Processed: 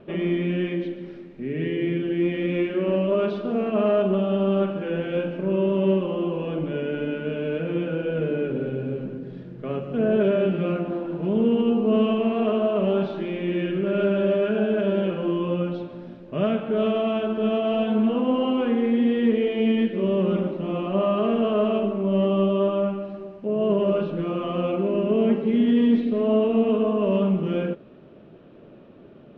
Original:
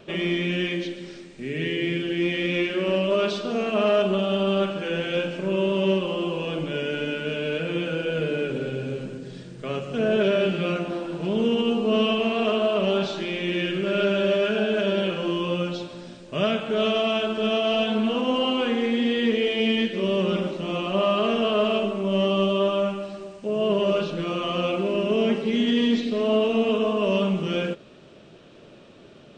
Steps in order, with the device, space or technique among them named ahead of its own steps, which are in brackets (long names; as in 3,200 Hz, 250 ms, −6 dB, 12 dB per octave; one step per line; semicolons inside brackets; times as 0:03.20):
phone in a pocket (low-pass filter 3,100 Hz 12 dB per octave; parametric band 250 Hz +3.5 dB 1.3 octaves; high-shelf EQ 2,100 Hz −12 dB)